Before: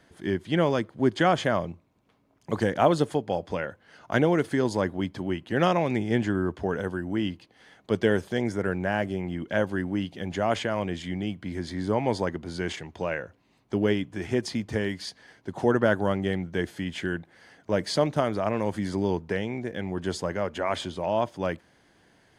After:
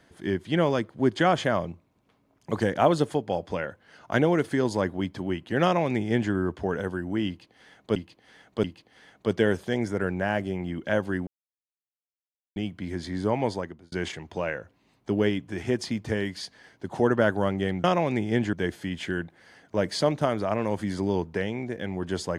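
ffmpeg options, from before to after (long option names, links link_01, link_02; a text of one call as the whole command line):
ffmpeg -i in.wav -filter_complex "[0:a]asplit=8[link_01][link_02][link_03][link_04][link_05][link_06][link_07][link_08];[link_01]atrim=end=7.962[link_09];[link_02]atrim=start=7.278:end=7.962[link_10];[link_03]atrim=start=7.278:end=9.91,asetpts=PTS-STARTPTS,afade=type=out:start_time=2.628:duration=0.004:curve=hsin[link_11];[link_04]atrim=start=9.91:end=11.2,asetpts=PTS-STARTPTS,volume=0[link_12];[link_05]atrim=start=11.2:end=12.56,asetpts=PTS-STARTPTS,afade=type=in:duration=0.004:curve=hsin,afade=type=out:start_time=0.84:duration=0.52[link_13];[link_06]atrim=start=12.56:end=16.482,asetpts=PTS-STARTPTS,afade=type=in:duration=0.004:curve=hsin[link_14];[link_07]atrim=start=5.628:end=6.322[link_15];[link_08]atrim=start=16.478[link_16];[link_09][link_10]acrossfade=duration=0.004:curve1=hsin:curve2=hsin[link_17];[link_11][link_12][link_13][link_14]concat=n=4:v=0:a=1[link_18];[link_17][link_18]acrossfade=duration=0.004:curve1=hsin:curve2=hsin[link_19];[link_19][link_15]acrossfade=duration=0.004:curve1=hsin:curve2=hsin[link_20];[link_20][link_16]acrossfade=duration=0.004:curve1=hsin:curve2=hsin" out.wav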